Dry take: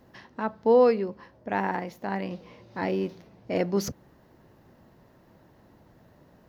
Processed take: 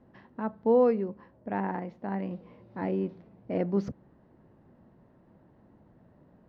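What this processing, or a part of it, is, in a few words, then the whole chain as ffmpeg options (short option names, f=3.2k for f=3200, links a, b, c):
phone in a pocket: -af "lowpass=3.7k,equalizer=f=210:t=o:w=0.98:g=4,highshelf=f=2.1k:g=-12,volume=-3.5dB"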